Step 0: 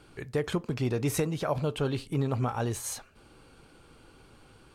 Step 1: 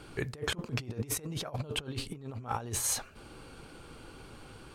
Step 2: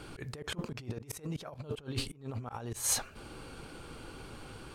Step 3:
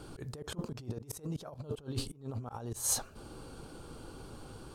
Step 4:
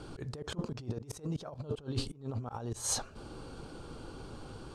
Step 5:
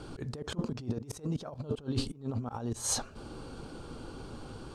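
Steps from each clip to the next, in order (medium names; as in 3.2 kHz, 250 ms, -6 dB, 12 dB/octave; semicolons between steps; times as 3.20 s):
compressor with a negative ratio -35 dBFS, ratio -0.5
slow attack 195 ms; trim +2.5 dB
peaking EQ 2.2 kHz -11.5 dB 1.1 oct
low-pass 6.9 kHz 12 dB/octave; trim +2 dB
dynamic bell 240 Hz, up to +6 dB, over -54 dBFS, Q 3; trim +1.5 dB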